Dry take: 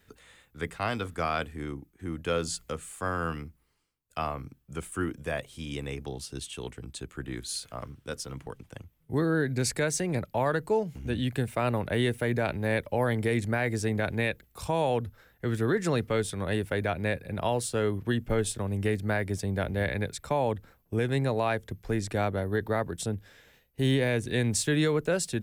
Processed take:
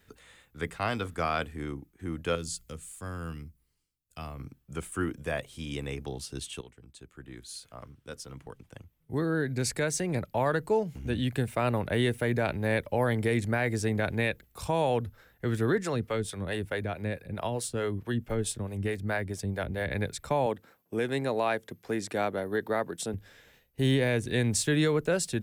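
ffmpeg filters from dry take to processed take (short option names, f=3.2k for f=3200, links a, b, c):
-filter_complex "[0:a]asettb=1/sr,asplit=3[a][b][c];[a]atrim=end=2.354[d];[b]atrim=start=2.35:end=4.4,asetpts=PTS-STARTPTS,afade=t=in:d=0.004:c=qsin,afade=t=out:st=2.046:d=0.004:c=qsin,equalizer=f=940:w=0.33:g=-12.5[e];[c]atrim=start=4.396[f];[d][e]acrossfade=d=0.004:c1=hsin:c2=qsin[g];[g][f]acrossfade=d=0.004:c1=qsin:c2=hsin,asettb=1/sr,asplit=3[h][i][j];[h]atrim=end=15.784[k];[i]atrim=start=15.78:end=19.91,asetpts=PTS-STARTPTS,afade=t=in:d=0.004:c=qsin,afade=t=out:st=4.126:d=0.004:c=qsin,acrossover=split=400[l][m];[l]aeval=exprs='val(0)*(1-0.7/2+0.7/2*cos(2*PI*4.6*n/s))':c=same[n];[m]aeval=exprs='val(0)*(1-0.7/2-0.7/2*cos(2*PI*4.6*n/s))':c=same[o];[n][o]amix=inputs=2:normalize=0[p];[j]atrim=start=19.906[q];[k][p]acrossfade=d=0.004:c1=hsin:c2=qsin[r];[r][q]acrossfade=d=0.004:c1=qsin:c2=hsin,asettb=1/sr,asplit=3[s][t][u];[s]atrim=end=20.464[v];[t]atrim=start=20.46:end=23.14,asetpts=PTS-STARTPTS,afade=t=in:d=0.004:c=qsin,afade=t=out:st=2.676:d=0.004:c=qsin,highpass=210[w];[u]atrim=start=23.136[x];[v][w]acrossfade=d=0.004:c1=hsin:c2=qsin[y];[y][x]acrossfade=d=0.004:c1=qsin:c2=hsin,asplit=2[z][aa];[z]atrim=end=6.61,asetpts=PTS-STARTPTS,afade=t=out:st=6.606:d=0.004:c=hsin:silence=0.211349[ab];[aa]atrim=start=6.61,asetpts=PTS-STARTPTS,afade=t=in:d=3.94:silence=0.211349[ac];[ab][ac]concat=n=2:v=0:a=1"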